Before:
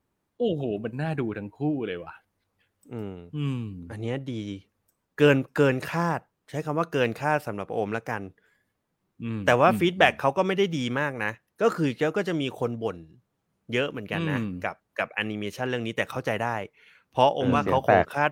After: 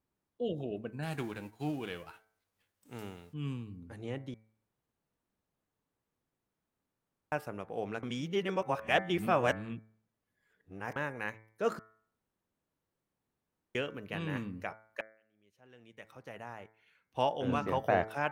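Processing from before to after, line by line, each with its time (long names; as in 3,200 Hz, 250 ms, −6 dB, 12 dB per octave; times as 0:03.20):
0:01.02–0:03.32: spectral envelope flattened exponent 0.6
0:04.34–0:07.32: fill with room tone
0:08.03–0:10.96: reverse
0:11.79–0:13.75: fill with room tone
0:15.01–0:17.36: fade in quadratic
whole clip: hum removal 109.8 Hz, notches 21; level −9 dB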